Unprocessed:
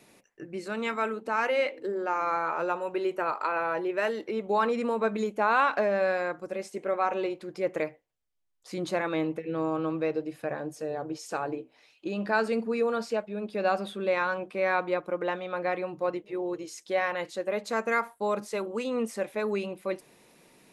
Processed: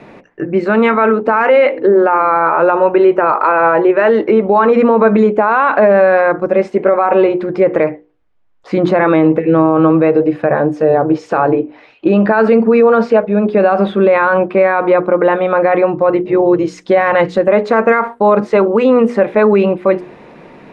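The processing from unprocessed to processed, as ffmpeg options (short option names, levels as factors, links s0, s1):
-filter_complex "[0:a]asettb=1/sr,asplit=3[s0][s1][s2];[s0]atrim=end=16.204[s3];[s1]atrim=start=16.2:end=17.48,asetpts=PTS-STARTPTS,afade=t=in:d=0.004:c=qsin,afade=t=out:st=1.276:d=0.004:c=qsin,bass=f=250:g=7,treble=f=4000:g=6[s4];[s2]atrim=start=17.476[s5];[s3][s4]acrossfade=d=0.004:c1=hsin:c2=qsin[s6];[s6][s5]acrossfade=d=0.004:c1=qsin:c2=hsin,lowpass=1700,bandreject=f=60:t=h:w=6,bandreject=f=120:t=h:w=6,bandreject=f=180:t=h:w=6,bandreject=f=240:t=h:w=6,bandreject=f=300:t=h:w=6,bandreject=f=360:t=h:w=6,bandreject=f=420:t=h:w=6,bandreject=f=480:t=h:w=6,alimiter=level_in=15.8:limit=0.891:release=50:level=0:latency=1,volume=0.891"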